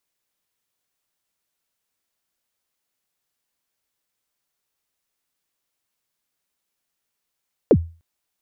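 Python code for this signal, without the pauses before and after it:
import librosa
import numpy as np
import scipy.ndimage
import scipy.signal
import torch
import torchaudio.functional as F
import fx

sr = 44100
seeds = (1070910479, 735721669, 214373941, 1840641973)

y = fx.drum_kick(sr, seeds[0], length_s=0.3, level_db=-6, start_hz=560.0, end_hz=83.0, sweep_ms=59.0, decay_s=0.34, click=False)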